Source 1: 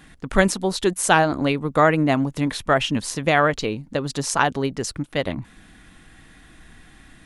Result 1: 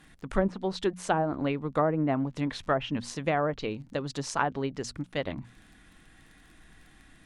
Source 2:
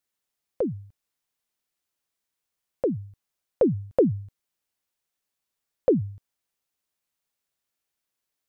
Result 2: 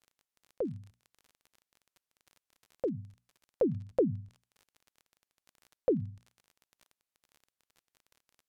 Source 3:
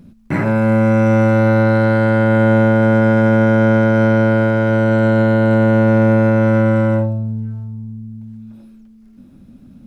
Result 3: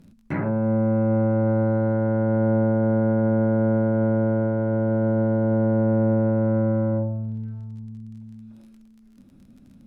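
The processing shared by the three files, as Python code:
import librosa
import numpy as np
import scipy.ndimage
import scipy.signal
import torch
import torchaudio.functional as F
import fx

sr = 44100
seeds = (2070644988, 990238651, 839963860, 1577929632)

y = fx.hum_notches(x, sr, base_hz=60, count=4)
y = fx.dmg_crackle(y, sr, seeds[0], per_s=29.0, level_db=-37.0)
y = fx.env_lowpass_down(y, sr, base_hz=800.0, full_db=-12.0)
y = F.gain(torch.from_numpy(y), -7.5).numpy()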